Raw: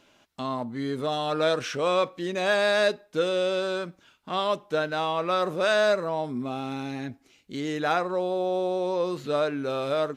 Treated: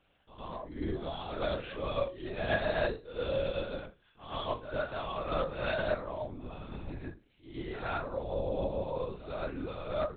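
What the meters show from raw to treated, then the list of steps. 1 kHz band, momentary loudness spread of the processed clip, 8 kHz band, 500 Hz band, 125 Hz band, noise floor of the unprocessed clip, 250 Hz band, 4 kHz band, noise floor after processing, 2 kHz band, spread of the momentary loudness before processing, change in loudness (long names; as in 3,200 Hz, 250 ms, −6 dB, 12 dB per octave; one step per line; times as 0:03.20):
−10.0 dB, 12 LU, below −35 dB, −9.0 dB, −2.5 dB, −62 dBFS, −9.5 dB, −11.5 dB, −68 dBFS, −9.5 dB, 10 LU, −9.0 dB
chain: resonators tuned to a chord C#2 sus4, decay 0.27 s
linear-prediction vocoder at 8 kHz whisper
backwards echo 108 ms −11 dB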